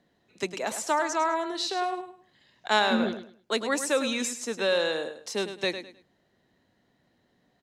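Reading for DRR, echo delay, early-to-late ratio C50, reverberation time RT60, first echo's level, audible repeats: none, 0.104 s, none, none, -10.0 dB, 3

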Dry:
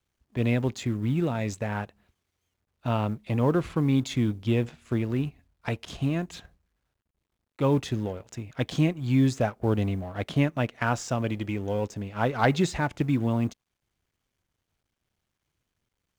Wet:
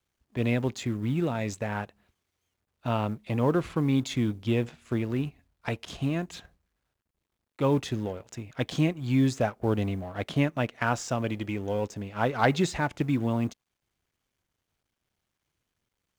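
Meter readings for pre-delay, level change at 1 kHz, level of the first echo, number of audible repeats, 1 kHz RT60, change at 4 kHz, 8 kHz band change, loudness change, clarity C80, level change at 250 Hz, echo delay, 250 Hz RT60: none, 0.0 dB, none, none, none, 0.0 dB, 0.0 dB, -1.5 dB, none, -1.5 dB, none, none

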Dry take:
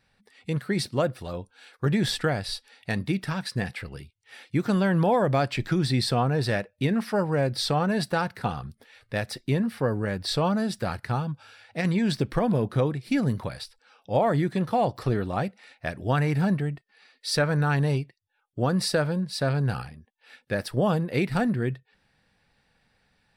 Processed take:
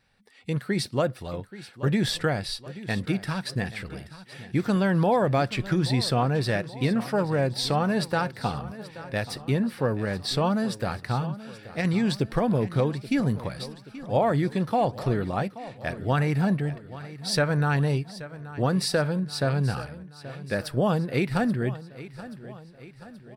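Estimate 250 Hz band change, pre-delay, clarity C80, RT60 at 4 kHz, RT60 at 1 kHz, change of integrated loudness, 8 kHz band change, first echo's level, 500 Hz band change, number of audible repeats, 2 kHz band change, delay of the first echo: 0.0 dB, none, none, none, none, 0.0 dB, 0.0 dB, -16.0 dB, 0.0 dB, 4, 0.0 dB, 0.829 s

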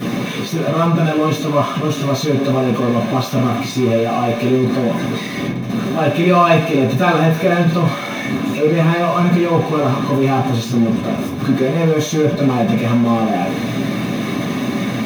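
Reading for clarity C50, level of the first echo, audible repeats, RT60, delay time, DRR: 5.0 dB, none, none, 0.45 s, none, -11.0 dB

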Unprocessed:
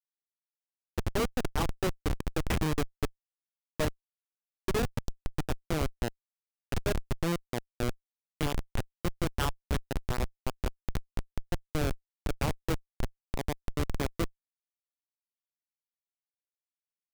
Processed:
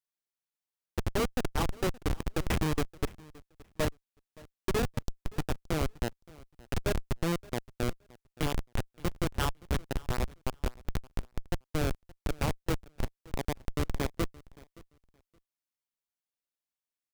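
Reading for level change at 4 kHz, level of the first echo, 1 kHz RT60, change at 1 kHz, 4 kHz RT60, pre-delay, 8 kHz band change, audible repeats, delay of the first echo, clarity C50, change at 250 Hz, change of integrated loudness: 0.0 dB, -22.5 dB, none, 0.0 dB, none, none, 0.0 dB, 1, 0.571 s, none, 0.0 dB, 0.0 dB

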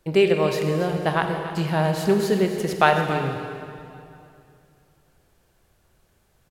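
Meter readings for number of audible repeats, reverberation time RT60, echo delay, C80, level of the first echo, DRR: 1, 2.6 s, 0.281 s, 5.5 dB, -12.5 dB, 4.0 dB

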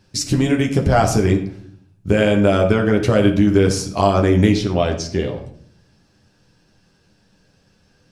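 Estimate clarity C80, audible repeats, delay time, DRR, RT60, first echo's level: 12.0 dB, none, none, 1.0 dB, 0.60 s, none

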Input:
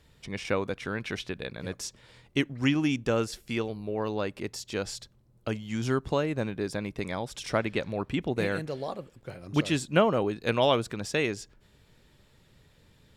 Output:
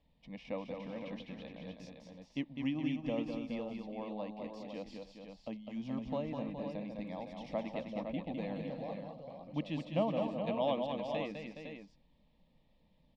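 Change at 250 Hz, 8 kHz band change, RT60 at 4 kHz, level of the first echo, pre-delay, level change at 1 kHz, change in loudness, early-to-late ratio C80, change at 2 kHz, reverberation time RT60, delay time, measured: -7.5 dB, under -25 dB, none, -5.5 dB, none, -9.5 dB, -9.5 dB, none, -16.5 dB, none, 0.204 s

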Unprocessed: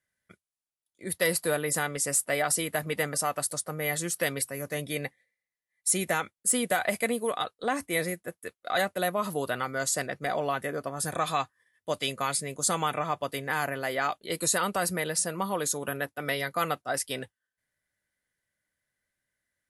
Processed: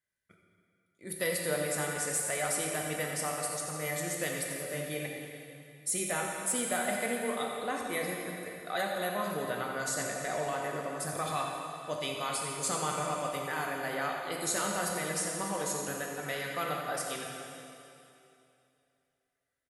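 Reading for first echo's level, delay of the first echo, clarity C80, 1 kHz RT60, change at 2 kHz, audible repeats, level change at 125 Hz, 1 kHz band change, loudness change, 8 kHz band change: -10.5 dB, 88 ms, 1.5 dB, 2.7 s, -4.0 dB, 1, -4.0 dB, -4.0 dB, -4.0 dB, -4.0 dB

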